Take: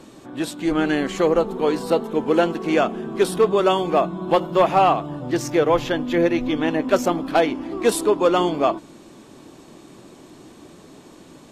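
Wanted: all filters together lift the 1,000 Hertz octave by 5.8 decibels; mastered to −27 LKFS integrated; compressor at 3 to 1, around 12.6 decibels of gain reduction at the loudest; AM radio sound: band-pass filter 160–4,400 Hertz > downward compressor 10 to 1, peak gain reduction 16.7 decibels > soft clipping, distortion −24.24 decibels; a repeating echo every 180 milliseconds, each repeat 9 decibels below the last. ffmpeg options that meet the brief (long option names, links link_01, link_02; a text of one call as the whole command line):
ffmpeg -i in.wav -af "equalizer=frequency=1000:width_type=o:gain=8,acompressor=threshold=-26dB:ratio=3,highpass=160,lowpass=4400,aecho=1:1:180|360|540|720:0.355|0.124|0.0435|0.0152,acompressor=threshold=-36dB:ratio=10,asoftclip=threshold=-28dB,volume=14dB" out.wav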